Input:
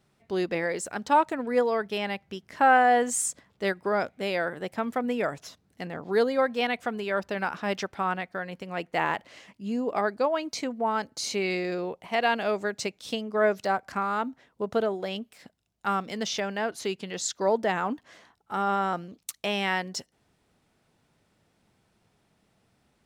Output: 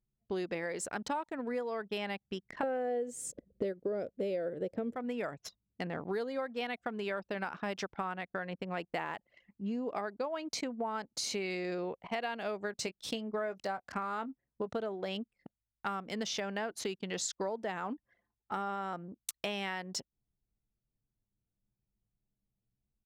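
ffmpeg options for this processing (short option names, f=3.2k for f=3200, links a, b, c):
-filter_complex "[0:a]asettb=1/sr,asplit=3[a][b][c];[a]atrim=end=2.634[d];[b]atrim=start=2.63:end=4.96,asetpts=PTS-STARTPTS,afade=t=in:d=0.004:c=qsin,afade=t=out:st=2.326:d=0.004:c=qsin,lowshelf=f=690:t=q:w=3:g=10[e];[c]atrim=start=4.956[f];[d][e]acrossfade=d=0.004:c1=hsin:c2=qsin[g];[g][f]acrossfade=d=0.004:c1=qsin:c2=hsin,asplit=3[h][i][j];[h]afade=t=out:st=12.71:d=0.02[k];[i]asplit=2[l][m];[m]adelay=22,volume=-13dB[n];[l][n]amix=inputs=2:normalize=0,afade=t=in:st=12.71:d=0.02,afade=t=out:st=14.66:d=0.02[o];[j]afade=t=in:st=14.66:d=0.02[p];[k][o][p]amix=inputs=3:normalize=0,anlmdn=0.158,acompressor=threshold=-33dB:ratio=10"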